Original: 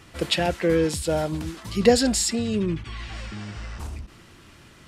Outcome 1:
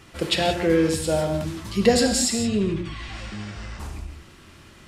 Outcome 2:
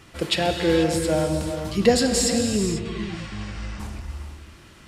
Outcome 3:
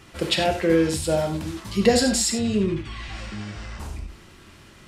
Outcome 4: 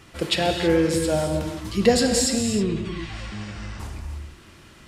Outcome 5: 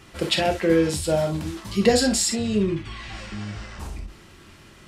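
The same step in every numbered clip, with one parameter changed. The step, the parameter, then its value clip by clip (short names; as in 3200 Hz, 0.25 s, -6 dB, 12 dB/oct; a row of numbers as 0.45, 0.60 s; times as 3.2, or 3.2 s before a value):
non-linear reverb, gate: 200, 520, 120, 350, 80 ms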